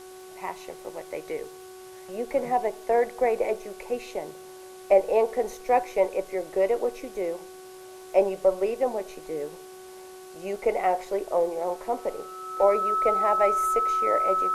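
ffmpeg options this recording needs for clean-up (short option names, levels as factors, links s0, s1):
-af "adeclick=t=4,bandreject=f=372.7:t=h:w=4,bandreject=f=745.4:t=h:w=4,bandreject=f=1118.1:t=h:w=4,bandreject=f=1490.8:t=h:w=4,bandreject=f=1300:w=30,afwtdn=0.0028"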